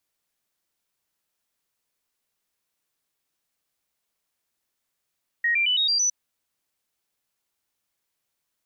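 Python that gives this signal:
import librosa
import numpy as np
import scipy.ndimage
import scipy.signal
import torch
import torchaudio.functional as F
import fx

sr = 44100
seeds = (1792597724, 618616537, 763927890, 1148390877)

y = fx.stepped_sweep(sr, from_hz=1880.0, direction='up', per_octave=3, tones=6, dwell_s=0.11, gap_s=0.0, level_db=-19.0)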